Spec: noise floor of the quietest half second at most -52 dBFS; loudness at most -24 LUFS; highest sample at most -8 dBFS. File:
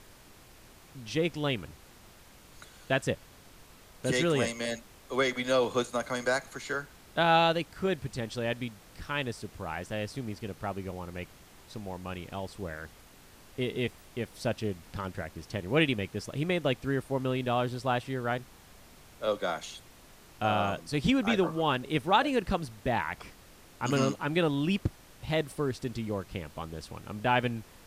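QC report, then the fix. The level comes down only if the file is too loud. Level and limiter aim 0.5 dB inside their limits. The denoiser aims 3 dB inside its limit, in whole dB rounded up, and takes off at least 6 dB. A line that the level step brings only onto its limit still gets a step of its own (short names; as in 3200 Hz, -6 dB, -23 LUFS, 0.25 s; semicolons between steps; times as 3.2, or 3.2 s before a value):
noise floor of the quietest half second -54 dBFS: OK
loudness -31.0 LUFS: OK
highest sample -10.5 dBFS: OK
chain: none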